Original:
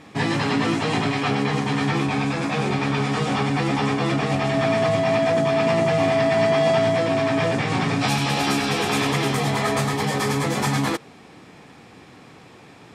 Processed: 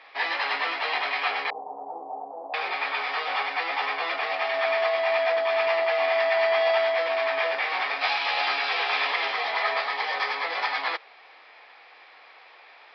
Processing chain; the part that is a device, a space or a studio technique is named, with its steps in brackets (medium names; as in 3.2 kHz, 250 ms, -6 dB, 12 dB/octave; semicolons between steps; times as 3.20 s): 1.50–2.54 s: steep low-pass 840 Hz 48 dB/octave; musical greeting card (resampled via 11.025 kHz; high-pass 610 Hz 24 dB/octave; peaking EQ 2.1 kHz +5 dB 0.53 oct); trim -2 dB